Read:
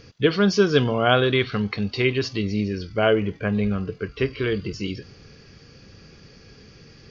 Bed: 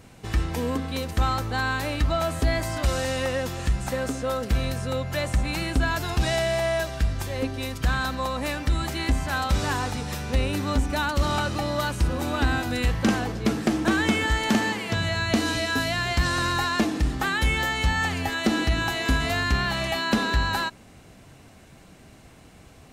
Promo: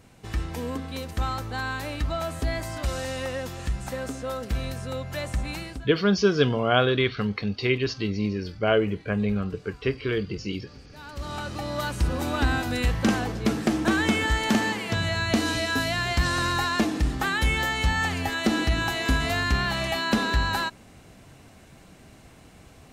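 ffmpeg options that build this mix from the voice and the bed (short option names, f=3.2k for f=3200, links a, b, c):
-filter_complex "[0:a]adelay=5650,volume=-2.5dB[a];[1:a]volume=23dB,afade=t=out:st=5.51:d=0.37:silence=0.0668344,afade=t=in:st=10.91:d=1.23:silence=0.0421697[b];[a][b]amix=inputs=2:normalize=0"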